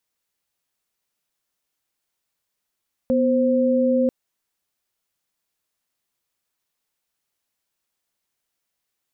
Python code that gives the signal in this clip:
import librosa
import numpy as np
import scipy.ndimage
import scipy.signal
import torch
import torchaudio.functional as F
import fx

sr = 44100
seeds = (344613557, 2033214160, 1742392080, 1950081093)

y = fx.chord(sr, length_s=0.99, notes=(59, 72), wave='sine', level_db=-18.5)